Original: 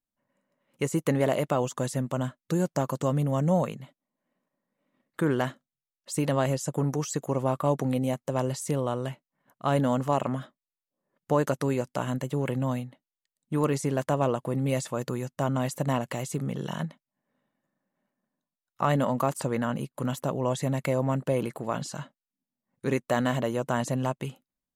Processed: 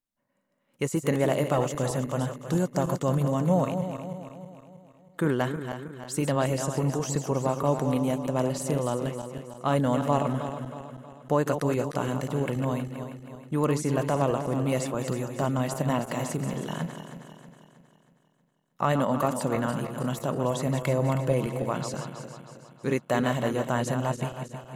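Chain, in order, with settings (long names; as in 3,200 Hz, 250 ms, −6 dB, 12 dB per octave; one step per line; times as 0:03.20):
feedback delay that plays each chunk backwards 159 ms, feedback 68%, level −8 dB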